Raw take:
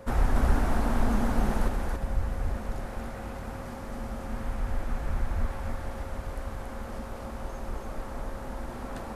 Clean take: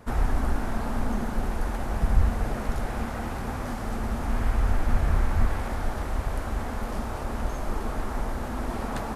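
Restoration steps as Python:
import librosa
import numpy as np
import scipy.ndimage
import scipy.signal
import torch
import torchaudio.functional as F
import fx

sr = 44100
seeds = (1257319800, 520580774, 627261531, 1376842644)

y = fx.notch(x, sr, hz=540.0, q=30.0)
y = fx.fix_echo_inverse(y, sr, delay_ms=280, level_db=-3.0)
y = fx.fix_level(y, sr, at_s=1.68, step_db=8.5)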